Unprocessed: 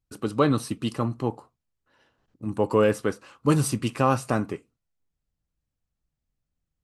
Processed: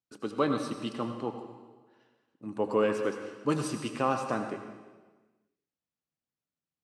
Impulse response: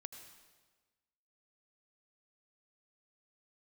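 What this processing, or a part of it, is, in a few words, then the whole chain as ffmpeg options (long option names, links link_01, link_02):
supermarket ceiling speaker: -filter_complex "[0:a]highpass=210,lowpass=6800[link_01];[1:a]atrim=start_sample=2205[link_02];[link_01][link_02]afir=irnorm=-1:irlink=0"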